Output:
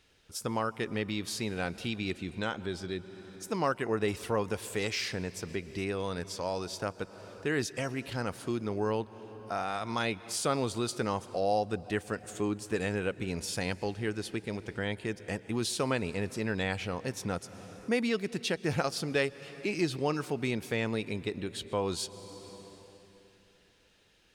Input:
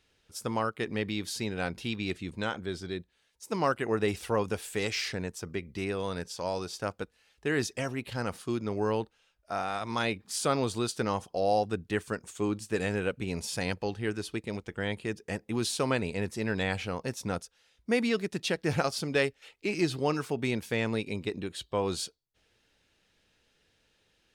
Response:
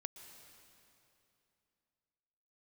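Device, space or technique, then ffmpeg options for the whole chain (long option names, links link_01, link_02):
compressed reverb return: -filter_complex "[0:a]asplit=2[link_01][link_02];[1:a]atrim=start_sample=2205[link_03];[link_02][link_03]afir=irnorm=-1:irlink=0,acompressor=threshold=-46dB:ratio=6,volume=7dB[link_04];[link_01][link_04]amix=inputs=2:normalize=0,volume=-3.5dB"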